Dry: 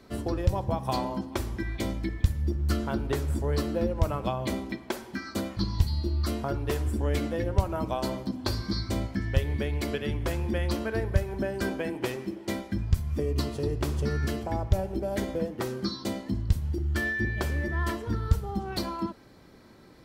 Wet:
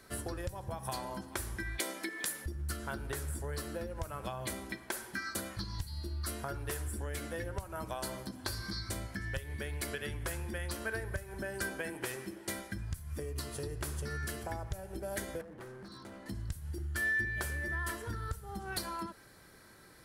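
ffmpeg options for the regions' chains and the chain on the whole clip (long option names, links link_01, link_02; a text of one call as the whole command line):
ffmpeg -i in.wav -filter_complex "[0:a]asettb=1/sr,asplit=3[link_01][link_02][link_03];[link_01]atrim=end=1.794[link_04];[link_02]atrim=start=1.79:end=2.46,asetpts=PTS-STARTPTS,afade=type=in:duration=0.004:curve=qsin,afade=type=out:start_time=0.666:duration=0.004:curve=qsin,highpass=frequency=290:width=0.5412,highpass=frequency=290:width=1.3066,acontrast=82[link_05];[link_03]atrim=start=2.456[link_06];[link_04][link_05]acrossfade=duration=0.004:curve1=hsin:curve2=qsin[link_07];[link_07][link_06]acrossfade=duration=0.004:curve1=qsin:curve2=hsin,asettb=1/sr,asplit=3[link_08][link_09][link_10];[link_08]atrim=end=15.414[link_11];[link_09]atrim=start=15.41:end=16.26,asetpts=PTS-STARTPTS,afade=type=in:duration=0.004:curve=qsin,afade=type=out:start_time=0.846:duration=0.004:curve=qsin,lowpass=frequency=1100:poles=1,acompressor=threshold=-36dB:ratio=5:attack=3.2:release=140:knee=1:detection=peak,asoftclip=type=hard:threshold=-37.5dB[link_12];[link_10]atrim=start=16.256[link_13];[link_11][link_12]acrossfade=duration=0.004:curve1=hsin:curve2=qsin[link_14];[link_14][link_13]acrossfade=duration=0.004:curve1=qsin:curve2=hsin,highshelf=frequency=5300:gain=9.5,acompressor=threshold=-29dB:ratio=10,equalizer=frequency=250:width_type=o:width=0.67:gain=-6,equalizer=frequency=1600:width_type=o:width=0.67:gain=9,equalizer=frequency=10000:width_type=o:width=0.67:gain=10,volume=-5.5dB" out.wav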